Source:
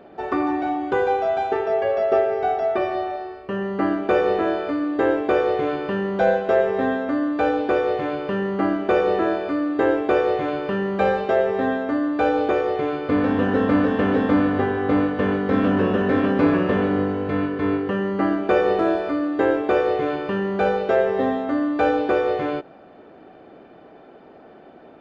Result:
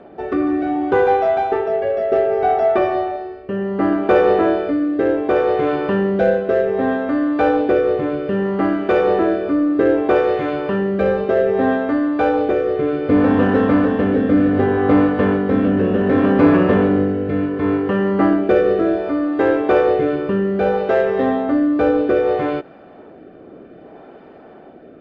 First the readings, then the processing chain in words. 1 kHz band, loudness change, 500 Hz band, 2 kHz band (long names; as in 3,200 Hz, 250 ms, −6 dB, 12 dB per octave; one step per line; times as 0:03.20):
+2.5 dB, +4.5 dB, +4.5 dB, +2.0 dB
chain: high-shelf EQ 3,400 Hz −9.5 dB
in parallel at −7 dB: soft clipping −20.5 dBFS, distortion −10 dB
on the sum: rotating-speaker cabinet horn 0.65 Hz
level +4.5 dB